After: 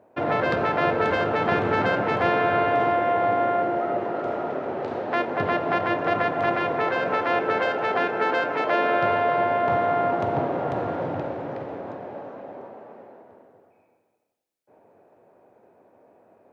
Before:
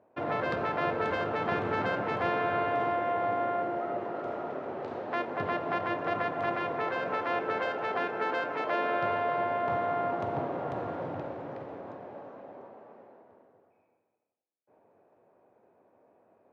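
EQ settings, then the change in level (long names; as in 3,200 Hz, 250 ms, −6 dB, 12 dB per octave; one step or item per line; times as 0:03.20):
parametric band 1,100 Hz −3 dB 0.28 octaves
+8.0 dB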